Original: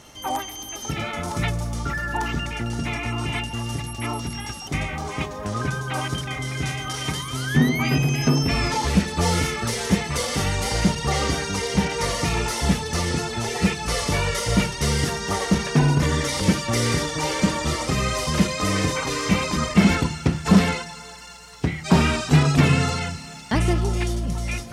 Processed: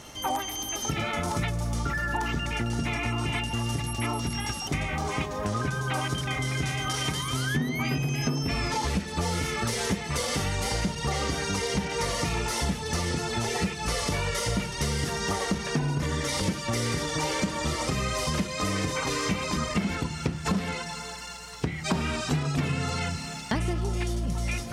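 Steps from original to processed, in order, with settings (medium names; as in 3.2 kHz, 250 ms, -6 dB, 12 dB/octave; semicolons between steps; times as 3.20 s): compression 6:1, threshold -27 dBFS, peak gain reduction 16.5 dB; trim +2 dB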